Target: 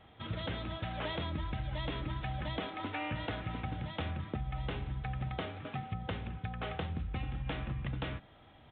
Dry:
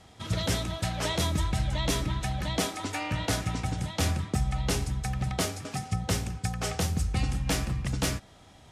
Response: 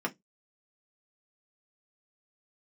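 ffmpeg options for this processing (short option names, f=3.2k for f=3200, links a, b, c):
-filter_complex "[0:a]acompressor=threshold=-28dB:ratio=6,asplit=2[a][b];[1:a]atrim=start_sample=2205,asetrate=39249,aresample=44100[c];[b][c]afir=irnorm=-1:irlink=0,volume=-18dB[d];[a][d]amix=inputs=2:normalize=0,aresample=8000,aresample=44100,volume=-5dB"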